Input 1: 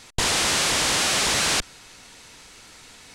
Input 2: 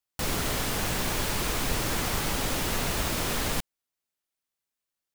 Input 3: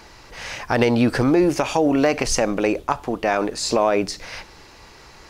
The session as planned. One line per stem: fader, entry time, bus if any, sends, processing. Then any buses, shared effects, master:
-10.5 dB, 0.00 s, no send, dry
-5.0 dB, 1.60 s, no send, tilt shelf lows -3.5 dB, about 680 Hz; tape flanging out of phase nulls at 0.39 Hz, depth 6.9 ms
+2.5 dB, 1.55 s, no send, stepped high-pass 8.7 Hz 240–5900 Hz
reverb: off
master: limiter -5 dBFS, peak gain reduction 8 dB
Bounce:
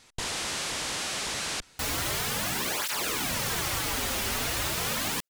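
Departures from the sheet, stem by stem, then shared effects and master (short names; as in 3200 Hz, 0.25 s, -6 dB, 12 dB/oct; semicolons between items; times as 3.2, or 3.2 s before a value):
stem 2 -5.0 dB -> +1.0 dB; stem 3: muted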